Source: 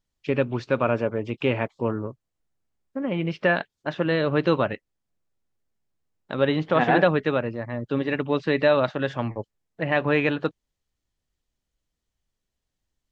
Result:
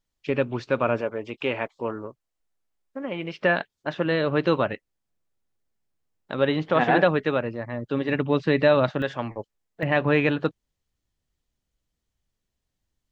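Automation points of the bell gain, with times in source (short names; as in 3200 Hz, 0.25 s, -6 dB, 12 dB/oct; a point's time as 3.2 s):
bell 110 Hz 2.6 oct
-3 dB
from 1.01 s -11.5 dB
from 3.38 s -2 dB
from 8.09 s +4.5 dB
from 9.02 s -6 dB
from 9.83 s +3 dB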